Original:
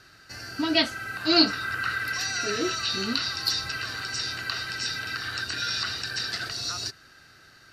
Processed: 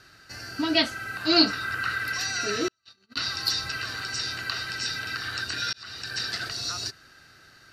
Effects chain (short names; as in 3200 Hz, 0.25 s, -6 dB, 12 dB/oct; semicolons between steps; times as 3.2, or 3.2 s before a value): 2.68–3.17 gate -23 dBFS, range -46 dB; 5.73–6.19 fade in